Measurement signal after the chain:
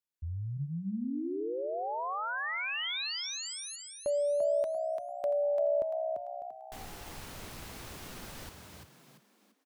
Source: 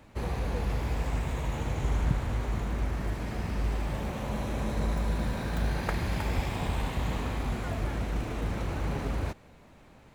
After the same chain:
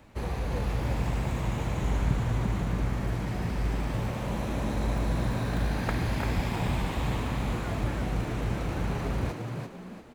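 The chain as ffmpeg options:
ffmpeg -i in.wav -filter_complex "[0:a]acrossover=split=4600[link_01][link_02];[link_02]acompressor=threshold=-46dB:ratio=4:attack=1:release=60[link_03];[link_01][link_03]amix=inputs=2:normalize=0,asplit=6[link_04][link_05][link_06][link_07][link_08][link_09];[link_05]adelay=342,afreqshift=64,volume=-5dB[link_10];[link_06]adelay=684,afreqshift=128,volume=-13.4dB[link_11];[link_07]adelay=1026,afreqshift=192,volume=-21.8dB[link_12];[link_08]adelay=1368,afreqshift=256,volume=-30.2dB[link_13];[link_09]adelay=1710,afreqshift=320,volume=-38.6dB[link_14];[link_04][link_10][link_11][link_12][link_13][link_14]amix=inputs=6:normalize=0" out.wav

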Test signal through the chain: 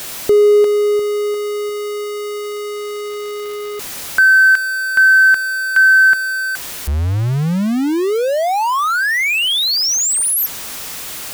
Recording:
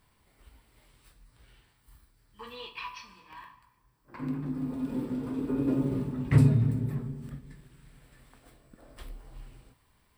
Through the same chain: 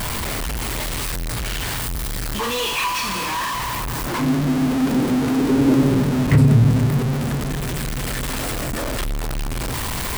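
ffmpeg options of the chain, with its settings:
ffmpeg -i in.wav -af "aeval=exprs='val(0)+0.5*0.0376*sgn(val(0))':channel_layout=same,alimiter=level_in=14dB:limit=-1dB:release=50:level=0:latency=1,volume=-4.5dB" out.wav

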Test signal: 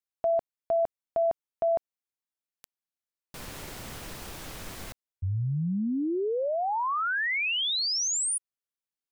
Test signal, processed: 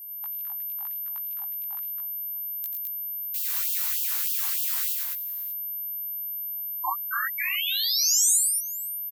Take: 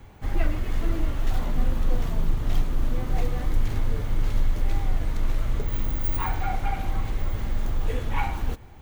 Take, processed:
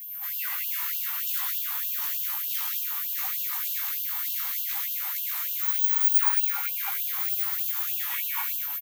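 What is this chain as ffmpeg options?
ffmpeg -i in.wav -filter_complex "[0:a]aemphasis=mode=production:type=50fm,bandreject=frequency=111.6:width_type=h:width=4,bandreject=frequency=223.2:width_type=h:width=4,bandreject=frequency=334.8:width_type=h:width=4,bandreject=frequency=446.4:width_type=h:width=4,bandreject=frequency=558:width_type=h:width=4,bandreject=frequency=669.6:width_type=h:width=4,bandreject=frequency=781.2:width_type=h:width=4,bandreject=frequency=892.8:width_type=h:width=4,bandreject=frequency=1004.4:width_type=h:width=4,bandreject=frequency=1116:width_type=h:width=4,bandreject=frequency=1227.6:width_type=h:width=4,bandreject=frequency=1339.2:width_type=h:width=4,bandreject=frequency=1450.8:width_type=h:width=4,bandreject=frequency=1562.4:width_type=h:width=4,bandreject=frequency=1674:width_type=h:width=4,bandreject=frequency=1785.6:width_type=h:width=4,bandreject=frequency=1897.2:width_type=h:width=4,bandreject=frequency=2008.8:width_type=h:width=4,bandreject=frequency=2120.4:width_type=h:width=4,bandreject=frequency=2232:width_type=h:width=4,bandreject=frequency=2343.6:width_type=h:width=4,bandreject=frequency=2455.2:width_type=h:width=4,acrossover=split=810|7100[link_01][link_02][link_03];[link_01]acompressor=threshold=-25dB:ratio=4[link_04];[link_02]acompressor=threshold=-34dB:ratio=4[link_05];[link_03]acompressor=threshold=-29dB:ratio=4[link_06];[link_04][link_05][link_06]amix=inputs=3:normalize=0,aeval=exprs='val(0)+0.01*sin(2*PI*13000*n/s)':channel_layout=same,asplit=2[link_07][link_08];[link_08]adelay=17,volume=-2dB[link_09];[link_07][link_09]amix=inputs=2:normalize=0,aecho=1:1:87|109|211|591:0.398|0.531|0.708|0.112,afftfilt=real='re*gte(b*sr/1024,760*pow(2700/760,0.5+0.5*sin(2*PI*3.3*pts/sr)))':imag='im*gte(b*sr/1024,760*pow(2700/760,0.5+0.5*sin(2*PI*3.3*pts/sr)))':win_size=1024:overlap=0.75" out.wav

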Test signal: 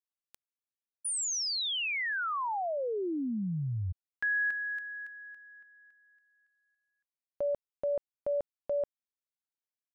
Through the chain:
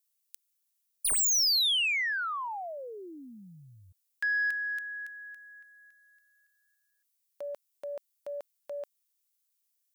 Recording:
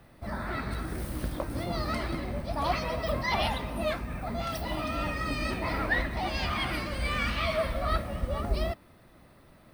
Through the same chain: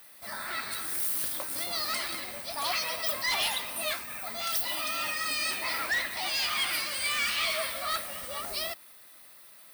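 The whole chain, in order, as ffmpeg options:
ffmpeg -i in.wav -af "aderivative,aeval=exprs='0.0501*(cos(1*acos(clip(val(0)/0.0501,-1,1)))-cos(1*PI/2))+0.00316*(cos(2*acos(clip(val(0)/0.0501,-1,1)))-cos(2*PI/2))+0.0224*(cos(5*acos(clip(val(0)/0.0501,-1,1)))-cos(5*PI/2))':channel_layout=same,volume=4.5dB" out.wav

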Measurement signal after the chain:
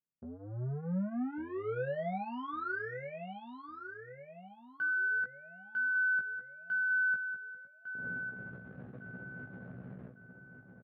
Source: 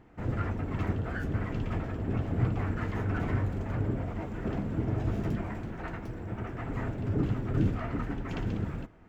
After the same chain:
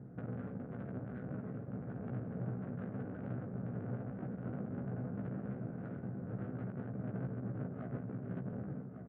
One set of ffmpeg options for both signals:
ffmpeg -i in.wav -filter_complex "[0:a]aemphasis=mode=reproduction:type=riaa,alimiter=limit=-13.5dB:level=0:latency=1:release=41,acompressor=threshold=-32dB:ratio=2.5,asoftclip=type=tanh:threshold=-37dB,adynamicsmooth=sensitivity=3:basefreq=580,highpass=frequency=140:width=0.5412,highpass=frequency=140:width=1.3066,equalizer=frequency=330:width_type=q:width=4:gain=-9,equalizer=frequency=950:width_type=q:width=4:gain=-8,equalizer=frequency=1500:width_type=q:width=4:gain=8,lowpass=frequency=3700:width=0.5412,lowpass=frequency=3700:width=1.3066,asplit=2[link_01][link_02];[link_02]adelay=16,volume=-4dB[link_03];[link_01][link_03]amix=inputs=2:normalize=0,asplit=2[link_04][link_05];[link_05]adelay=1153,lowpass=frequency=2000:poles=1,volume=-7.5dB,asplit=2[link_06][link_07];[link_07]adelay=1153,lowpass=frequency=2000:poles=1,volume=0.43,asplit=2[link_08][link_09];[link_09]adelay=1153,lowpass=frequency=2000:poles=1,volume=0.43,asplit=2[link_10][link_11];[link_11]adelay=1153,lowpass=frequency=2000:poles=1,volume=0.43,asplit=2[link_12][link_13];[link_13]adelay=1153,lowpass=frequency=2000:poles=1,volume=0.43[link_14];[link_06][link_08][link_10][link_12][link_14]amix=inputs=5:normalize=0[link_15];[link_04][link_15]amix=inputs=2:normalize=0,volume=4dB" out.wav

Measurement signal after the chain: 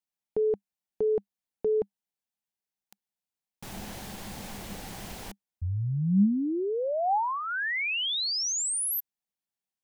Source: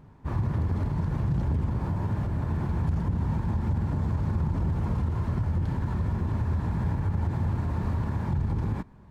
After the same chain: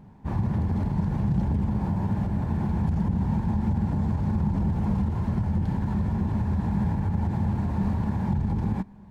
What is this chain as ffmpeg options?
ffmpeg -i in.wav -af "equalizer=frequency=200:width_type=o:width=0.33:gain=11,equalizer=frequency=800:width_type=o:width=0.33:gain=6,equalizer=frequency=1250:width_type=o:width=0.33:gain=-5" out.wav

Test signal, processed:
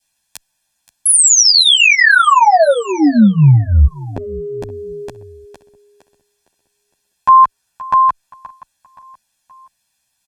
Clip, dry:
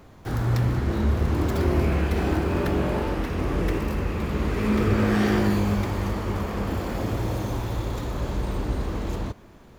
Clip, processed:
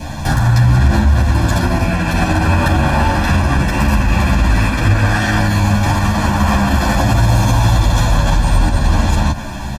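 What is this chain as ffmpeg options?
ffmpeg -i in.wav -filter_complex "[0:a]acompressor=threshold=-29dB:ratio=6,lowpass=10000,highshelf=frequency=4000:gain=8,aecho=1:1:1.2:0.9,aecho=1:1:524|1048|1572:0.0708|0.0304|0.0131,adynamicequalizer=threshold=0.00251:dfrequency=1300:dqfactor=3.6:tfrequency=1300:tqfactor=3.6:attack=5:release=100:ratio=0.375:range=4:mode=boostabove:tftype=bell,alimiter=level_in=25dB:limit=-1dB:release=50:level=0:latency=1,asplit=2[link_01][link_02];[link_02]adelay=10.6,afreqshift=-0.33[link_03];[link_01][link_03]amix=inputs=2:normalize=1,volume=-1dB" out.wav

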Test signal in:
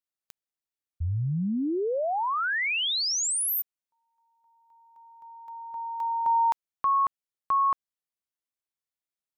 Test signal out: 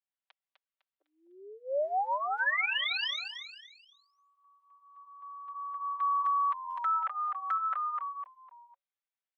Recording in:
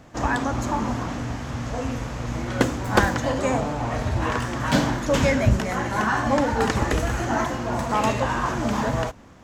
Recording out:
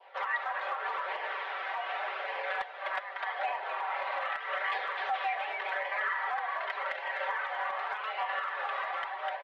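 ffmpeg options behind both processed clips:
ffmpeg -i in.wav -filter_complex "[0:a]asplit=2[link_01][link_02];[link_02]asplit=4[link_03][link_04][link_05][link_06];[link_03]adelay=252,afreqshift=-90,volume=-6dB[link_07];[link_04]adelay=504,afreqshift=-180,volume=-14.9dB[link_08];[link_05]adelay=756,afreqshift=-270,volume=-23.7dB[link_09];[link_06]adelay=1008,afreqshift=-360,volume=-32.6dB[link_10];[link_07][link_08][link_09][link_10]amix=inputs=4:normalize=0[link_11];[link_01][link_11]amix=inputs=2:normalize=0,flanger=delay=0.4:depth=1.9:regen=-55:speed=0.85:shape=sinusoidal,highpass=frequency=360:width_type=q:width=0.5412,highpass=frequency=360:width_type=q:width=1.307,lowpass=frequency=3500:width_type=q:width=0.5176,lowpass=frequency=3500:width_type=q:width=0.7071,lowpass=frequency=3500:width_type=q:width=1.932,afreqshift=210,acompressor=threshold=-29dB:ratio=16:attack=0.13:release=288:knee=1:detection=rms,adynamicequalizer=threshold=0.00282:dfrequency=1900:dqfactor=1.8:tfrequency=1900:tqfactor=1.8:attack=5:release=100:ratio=0.375:range=2.5:mode=boostabove:tftype=bell,aecho=1:1:5.2:0.78" out.wav

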